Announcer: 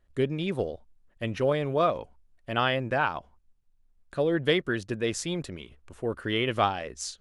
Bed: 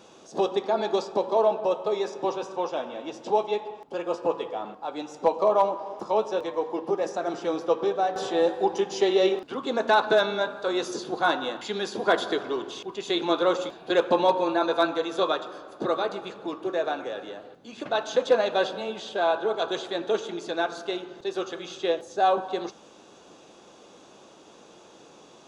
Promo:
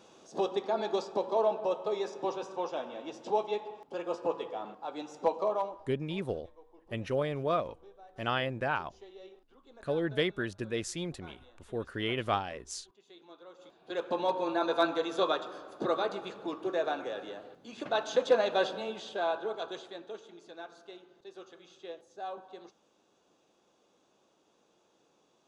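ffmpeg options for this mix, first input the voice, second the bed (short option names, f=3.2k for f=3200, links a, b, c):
-filter_complex "[0:a]adelay=5700,volume=-5.5dB[a];[1:a]volume=19.5dB,afade=t=out:st=5.28:d=0.67:silence=0.0668344,afade=t=in:st=13.56:d=1.29:silence=0.0530884,afade=t=out:st=18.67:d=1.48:silence=0.188365[b];[a][b]amix=inputs=2:normalize=0"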